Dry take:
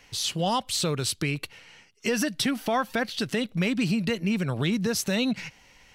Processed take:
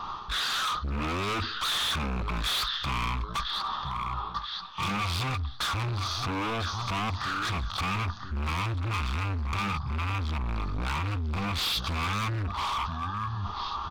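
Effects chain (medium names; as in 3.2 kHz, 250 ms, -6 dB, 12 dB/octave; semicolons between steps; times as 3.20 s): feedback delay 423 ms, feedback 29%, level -18 dB; in parallel at -12 dB: sine folder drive 15 dB, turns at -13 dBFS; on the sum: speed mistake 78 rpm record played at 33 rpm; FFT filter 120 Hz 0 dB, 620 Hz -6 dB, 1.2 kHz +11 dB, 2.4 kHz -23 dB, 3.5 kHz +9 dB, 8.3 kHz -6 dB; hard clipper -24 dBFS, distortion -9 dB; reverse; compression 12:1, threshold -34 dBFS, peak gain reduction 9 dB; reverse; peaking EQ 2.5 kHz +9.5 dB 0.62 oct; trim +4.5 dB; AAC 96 kbps 48 kHz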